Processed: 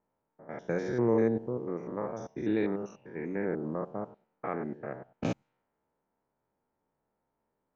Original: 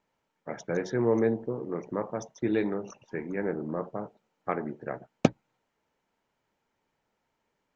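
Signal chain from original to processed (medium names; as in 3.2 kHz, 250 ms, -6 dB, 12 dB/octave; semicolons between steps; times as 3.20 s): spectrogram pixelated in time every 100 ms; level-controlled noise filter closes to 1.1 kHz, open at -29.5 dBFS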